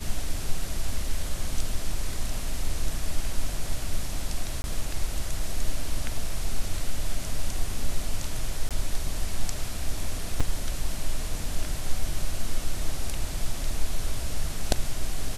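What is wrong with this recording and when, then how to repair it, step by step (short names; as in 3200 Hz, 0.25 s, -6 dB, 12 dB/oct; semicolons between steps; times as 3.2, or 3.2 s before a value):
4.62–4.64 gap 21 ms
8.69–8.71 gap 17 ms
10.4–10.41 gap 5.2 ms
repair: interpolate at 4.62, 21 ms; interpolate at 8.69, 17 ms; interpolate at 10.4, 5.2 ms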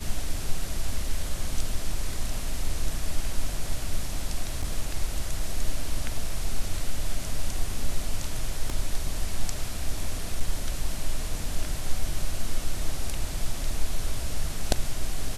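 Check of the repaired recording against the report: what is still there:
none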